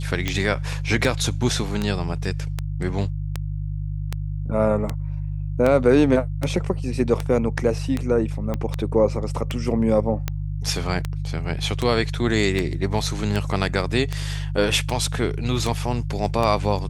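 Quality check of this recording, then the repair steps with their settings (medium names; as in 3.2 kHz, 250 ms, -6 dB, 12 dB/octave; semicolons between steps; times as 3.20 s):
hum 50 Hz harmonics 3 -27 dBFS
tick 78 rpm -10 dBFS
8.54 s: pop -14 dBFS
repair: de-click; de-hum 50 Hz, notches 3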